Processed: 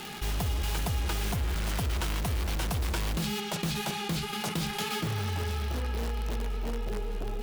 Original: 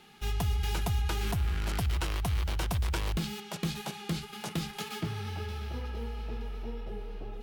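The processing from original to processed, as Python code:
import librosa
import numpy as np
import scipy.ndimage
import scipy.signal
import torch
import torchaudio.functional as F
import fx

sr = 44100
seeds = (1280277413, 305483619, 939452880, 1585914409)

p1 = fx.dmg_crackle(x, sr, seeds[0], per_s=270.0, level_db=-46.0)
p2 = (np.mod(10.0 ** (30.0 / 20.0) * p1 + 1.0, 2.0) - 1.0) / 10.0 ** (30.0 / 20.0)
p3 = p1 + (p2 * 10.0 ** (-5.5 / 20.0))
p4 = fx.env_flatten(p3, sr, amount_pct=50)
y = p4 * 10.0 ** (-1.5 / 20.0)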